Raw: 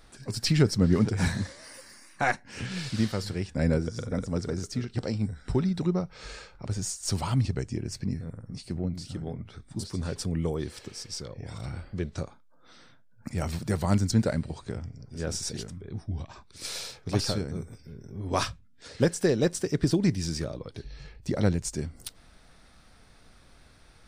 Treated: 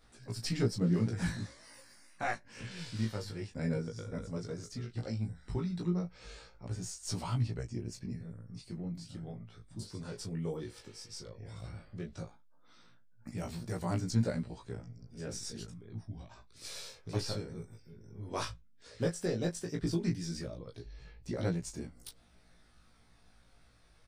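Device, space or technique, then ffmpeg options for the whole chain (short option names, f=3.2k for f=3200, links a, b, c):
double-tracked vocal: -filter_complex "[0:a]asplit=2[a][b];[b]adelay=17,volume=-5dB[c];[a][c]amix=inputs=2:normalize=0,flanger=delay=17:depth=2.2:speed=0.14,volume=-7dB"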